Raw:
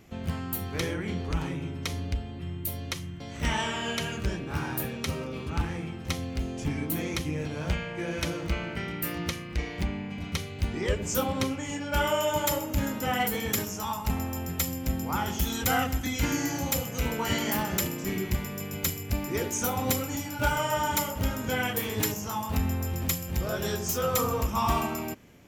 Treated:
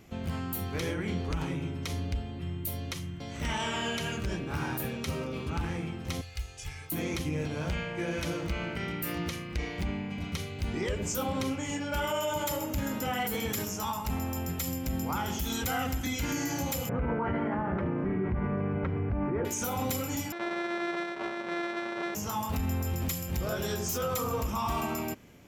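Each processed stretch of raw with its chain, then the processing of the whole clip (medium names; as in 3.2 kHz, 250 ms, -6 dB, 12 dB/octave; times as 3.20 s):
6.21–6.92 s: amplifier tone stack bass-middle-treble 10-0-10 + comb 2.4 ms, depth 67%
16.89–19.45 s: low-pass 1.6 kHz 24 dB/octave + level flattener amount 50%
20.32–22.15 s: sorted samples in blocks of 128 samples + band-pass 410–2400 Hz + comb 5.3 ms, depth 62%
whole clip: band-stop 1.8 kHz, Q 29; peak limiter -22.5 dBFS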